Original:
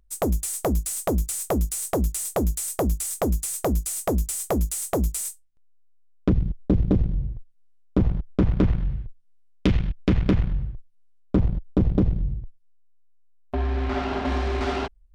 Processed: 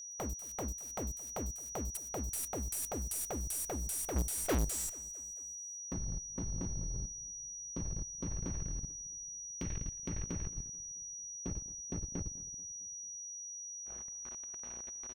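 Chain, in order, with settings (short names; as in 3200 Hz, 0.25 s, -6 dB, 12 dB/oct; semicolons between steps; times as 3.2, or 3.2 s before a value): Doppler pass-by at 4.61, 32 m/s, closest 7.6 m; sample leveller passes 5; level quantiser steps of 17 dB; sample leveller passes 1; overloaded stage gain 21.5 dB; whine 5800 Hz -36 dBFS; feedback echo 0.22 s, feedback 55%, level -21.5 dB; gain -8 dB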